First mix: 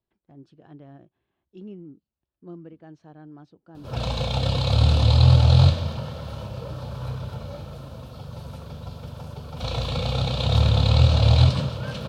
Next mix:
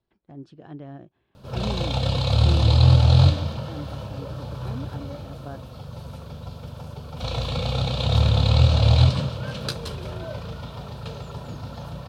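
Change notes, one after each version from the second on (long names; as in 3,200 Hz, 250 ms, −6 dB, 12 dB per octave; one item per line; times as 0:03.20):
speech +6.5 dB
background: entry −2.40 s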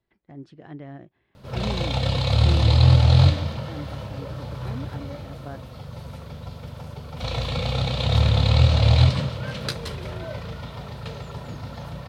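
master: add parametric band 2,000 Hz +11 dB 0.3 octaves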